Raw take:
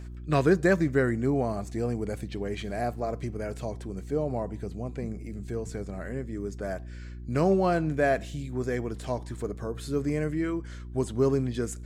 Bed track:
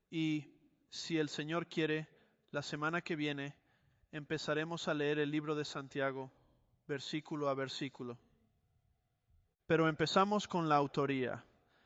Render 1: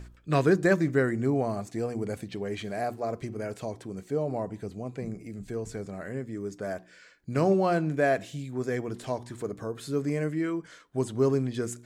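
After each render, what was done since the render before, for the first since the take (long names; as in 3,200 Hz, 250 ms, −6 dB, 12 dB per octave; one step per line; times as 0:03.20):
hum removal 60 Hz, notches 6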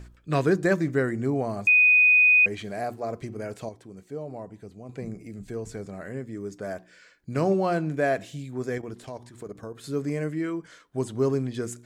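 0:01.67–0:02.46: beep over 2,490 Hz −14 dBFS
0:03.69–0:04.89: clip gain −6.5 dB
0:08.78–0:09.84: output level in coarse steps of 12 dB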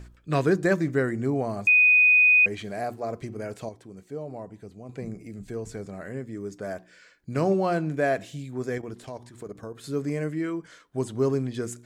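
no processing that can be heard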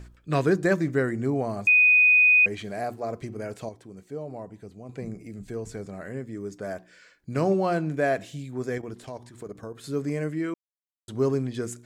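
0:10.54–0:11.08: silence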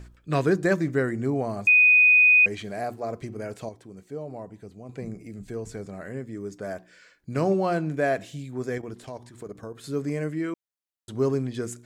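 dynamic equaliser 5,600 Hz, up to +4 dB, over −34 dBFS, Q 0.87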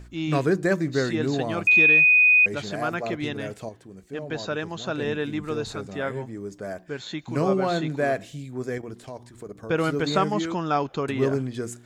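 mix in bed track +7 dB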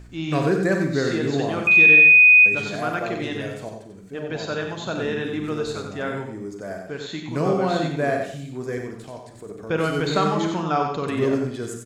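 on a send: single-tap delay 92 ms −6 dB
on the sum: four-comb reverb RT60 0.56 s, combs from 33 ms, DRR 6 dB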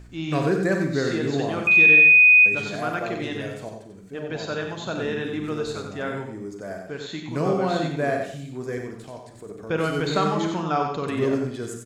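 level −1.5 dB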